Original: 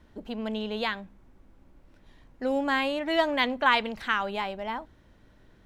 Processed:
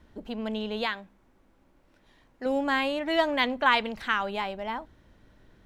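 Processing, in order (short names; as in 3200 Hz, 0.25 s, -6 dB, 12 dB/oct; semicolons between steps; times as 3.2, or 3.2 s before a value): 0.86–2.46 low shelf 200 Hz -10.5 dB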